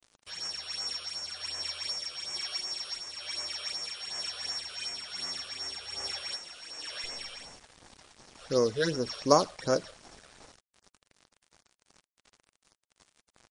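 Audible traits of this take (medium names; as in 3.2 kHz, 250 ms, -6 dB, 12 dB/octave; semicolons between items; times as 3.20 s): a buzz of ramps at a fixed pitch in blocks of 8 samples; phasing stages 8, 2.7 Hz, lowest notch 250–3800 Hz; a quantiser's noise floor 8-bit, dither none; MP3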